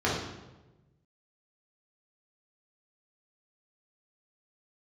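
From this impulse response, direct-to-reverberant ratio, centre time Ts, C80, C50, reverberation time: -6.5 dB, 57 ms, 5.0 dB, 1.5 dB, 1.1 s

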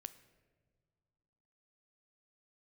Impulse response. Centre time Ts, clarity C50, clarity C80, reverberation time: 6 ms, 15.0 dB, 16.5 dB, not exponential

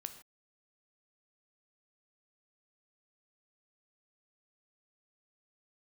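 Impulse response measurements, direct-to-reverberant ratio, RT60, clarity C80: 8.0 dB, not exponential, 13.0 dB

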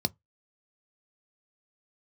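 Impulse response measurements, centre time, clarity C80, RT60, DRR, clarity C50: 2 ms, 44.0 dB, not exponential, 13.0 dB, 33.0 dB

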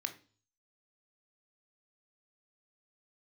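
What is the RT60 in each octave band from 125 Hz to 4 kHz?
0.70, 0.50, 0.40, 0.35, 0.35, 0.45 s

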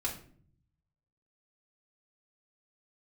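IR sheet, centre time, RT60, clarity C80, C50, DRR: 19 ms, 0.55 s, 13.5 dB, 9.0 dB, -5.5 dB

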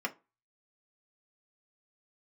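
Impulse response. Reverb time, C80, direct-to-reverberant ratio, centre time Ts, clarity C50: 0.30 s, 27.5 dB, 2.0 dB, 6 ms, 20.0 dB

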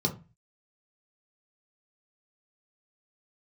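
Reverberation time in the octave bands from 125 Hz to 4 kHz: 0.50, 0.40, 0.30, 0.30, 0.30, 0.20 s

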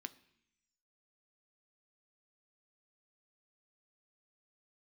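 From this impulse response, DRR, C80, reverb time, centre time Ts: 11.0 dB, 21.0 dB, 0.70 s, 4 ms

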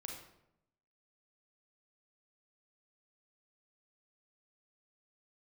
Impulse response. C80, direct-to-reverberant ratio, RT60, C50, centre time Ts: 6.0 dB, 0.0 dB, 0.80 s, 2.5 dB, 41 ms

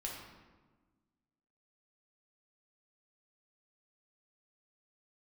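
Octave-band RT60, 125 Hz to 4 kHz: 1.7, 1.9, 1.4, 1.3, 1.0, 0.80 s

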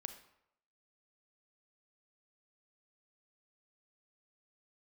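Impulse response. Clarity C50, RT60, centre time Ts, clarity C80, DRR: 10.0 dB, 0.80 s, 12 ms, 13.0 dB, 8.0 dB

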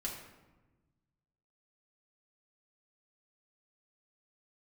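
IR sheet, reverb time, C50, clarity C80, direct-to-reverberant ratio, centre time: 1.2 s, 4.5 dB, 6.5 dB, -4.0 dB, 41 ms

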